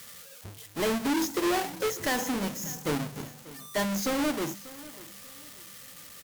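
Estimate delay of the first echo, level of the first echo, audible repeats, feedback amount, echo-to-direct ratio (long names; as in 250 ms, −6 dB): 590 ms, −19.0 dB, 2, 34%, −18.5 dB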